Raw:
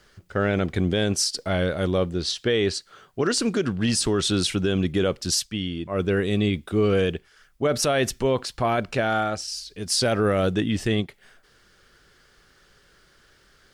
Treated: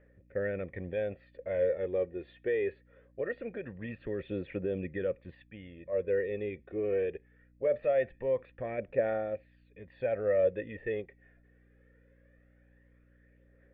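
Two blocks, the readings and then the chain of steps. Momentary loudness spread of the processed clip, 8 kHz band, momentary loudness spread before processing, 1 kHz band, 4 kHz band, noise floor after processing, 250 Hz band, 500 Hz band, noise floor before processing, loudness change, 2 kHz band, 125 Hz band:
13 LU, under -40 dB, 6 LU, -16.5 dB, under -30 dB, -64 dBFS, -17.0 dB, -6.0 dB, -59 dBFS, -10.0 dB, -12.5 dB, -18.0 dB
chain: phaser 0.22 Hz, delay 2.9 ms, feedback 45%; hum 60 Hz, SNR 20 dB; cascade formant filter e

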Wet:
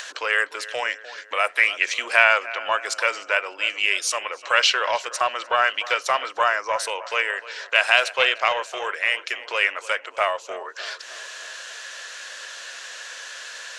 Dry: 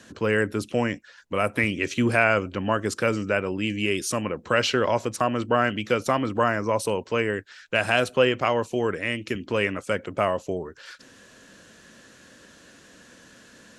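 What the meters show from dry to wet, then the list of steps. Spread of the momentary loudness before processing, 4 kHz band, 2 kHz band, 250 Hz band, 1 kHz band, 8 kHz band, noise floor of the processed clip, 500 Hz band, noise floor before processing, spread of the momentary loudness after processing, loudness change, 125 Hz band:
8 LU, +8.0 dB, +6.5 dB, under -20 dB, +3.5 dB, +5.5 dB, -44 dBFS, -4.0 dB, -52 dBFS, 17 LU, +3.0 dB, under -25 dB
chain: high-pass 570 Hz 24 dB/octave; tilt shelf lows -6.5 dB, about 1.2 kHz; upward compressor, threshold -29 dBFS; distance through air 63 m; filtered feedback delay 301 ms, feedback 58%, low-pass 2.4 kHz, level -15 dB; loudspeaker Doppler distortion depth 0.24 ms; trim +4.5 dB

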